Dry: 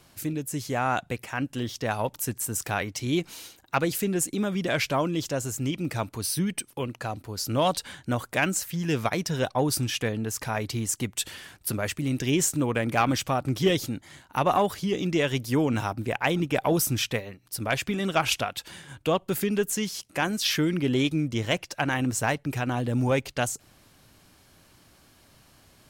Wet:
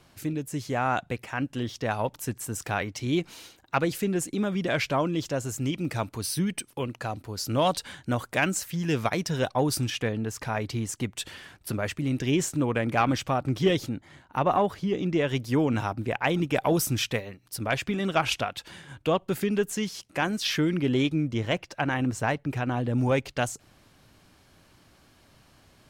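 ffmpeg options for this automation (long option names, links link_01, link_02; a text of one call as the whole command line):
ffmpeg -i in.wav -af "asetnsamples=nb_out_samples=441:pad=0,asendcmd='5.49 lowpass f 8500;9.9 lowpass f 3600;13.89 lowpass f 1800;15.29 lowpass f 3900;16.34 lowpass f 9000;17.58 lowpass f 4300;21.06 lowpass f 2500;22.98 lowpass f 5000',lowpass=frequency=4400:poles=1" out.wav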